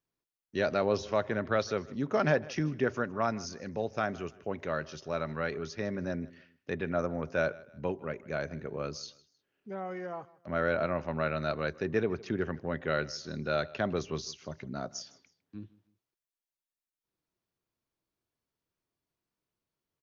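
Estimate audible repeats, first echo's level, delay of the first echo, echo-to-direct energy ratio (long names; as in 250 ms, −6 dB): 2, −21.5 dB, 156 ms, −21.0 dB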